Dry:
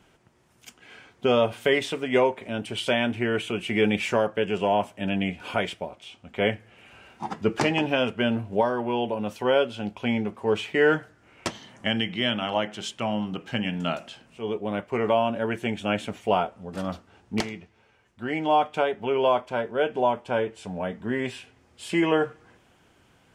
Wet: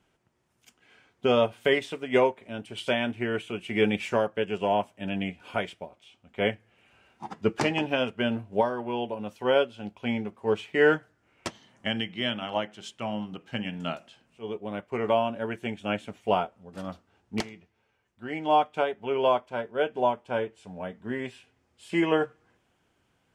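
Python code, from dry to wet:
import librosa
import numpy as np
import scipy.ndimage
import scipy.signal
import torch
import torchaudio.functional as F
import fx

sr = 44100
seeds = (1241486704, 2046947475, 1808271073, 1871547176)

y = fx.upward_expand(x, sr, threshold_db=-38.0, expansion=1.5)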